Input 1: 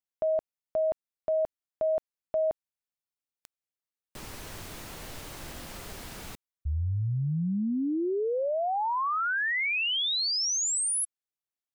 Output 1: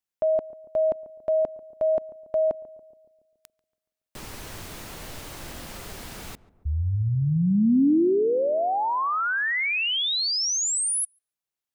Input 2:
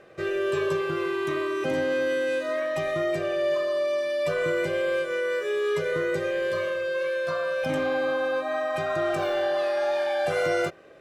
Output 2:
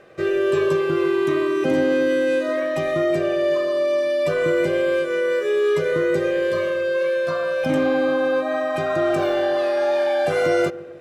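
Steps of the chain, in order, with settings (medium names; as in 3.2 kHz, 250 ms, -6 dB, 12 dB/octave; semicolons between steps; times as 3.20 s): dynamic bell 270 Hz, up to +7 dB, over -43 dBFS, Q 1; filtered feedback delay 141 ms, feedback 61%, low-pass 1 kHz, level -17 dB; trim +3 dB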